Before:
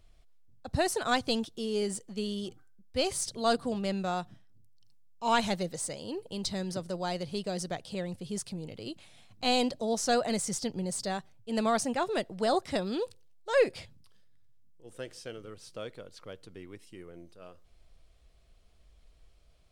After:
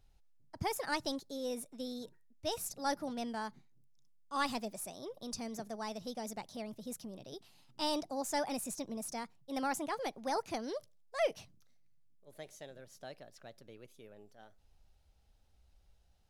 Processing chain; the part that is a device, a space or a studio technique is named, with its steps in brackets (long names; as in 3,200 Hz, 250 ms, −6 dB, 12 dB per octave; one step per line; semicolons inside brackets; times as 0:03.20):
nightcore (speed change +21%)
level −7.5 dB